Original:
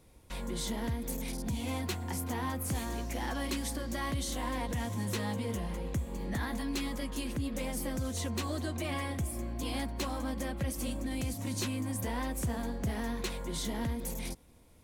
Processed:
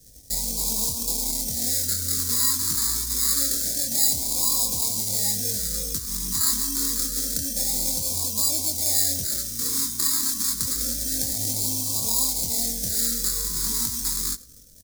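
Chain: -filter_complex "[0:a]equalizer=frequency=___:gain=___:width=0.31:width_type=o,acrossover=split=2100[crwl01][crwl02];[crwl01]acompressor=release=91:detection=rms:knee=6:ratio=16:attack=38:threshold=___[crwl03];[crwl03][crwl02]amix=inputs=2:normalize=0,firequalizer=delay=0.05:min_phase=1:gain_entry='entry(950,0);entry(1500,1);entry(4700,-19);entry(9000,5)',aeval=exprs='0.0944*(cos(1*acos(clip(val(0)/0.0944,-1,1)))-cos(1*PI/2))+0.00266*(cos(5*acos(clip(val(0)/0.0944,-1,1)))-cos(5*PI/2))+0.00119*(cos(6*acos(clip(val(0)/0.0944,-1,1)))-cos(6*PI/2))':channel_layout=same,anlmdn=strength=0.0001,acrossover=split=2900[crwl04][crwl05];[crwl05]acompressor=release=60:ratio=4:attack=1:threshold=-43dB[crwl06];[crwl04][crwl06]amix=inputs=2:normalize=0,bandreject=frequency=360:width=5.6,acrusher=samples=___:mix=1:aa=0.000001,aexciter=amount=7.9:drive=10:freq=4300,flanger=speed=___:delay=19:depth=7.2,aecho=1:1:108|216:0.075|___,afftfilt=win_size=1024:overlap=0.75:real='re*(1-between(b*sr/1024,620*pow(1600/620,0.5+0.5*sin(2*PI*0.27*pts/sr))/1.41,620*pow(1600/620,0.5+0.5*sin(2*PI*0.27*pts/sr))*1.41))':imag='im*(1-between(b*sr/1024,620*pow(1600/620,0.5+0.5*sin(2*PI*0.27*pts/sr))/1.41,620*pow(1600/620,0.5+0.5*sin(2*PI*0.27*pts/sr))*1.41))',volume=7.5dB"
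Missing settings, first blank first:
1200, 5, -41dB, 15, 0.35, 0.0255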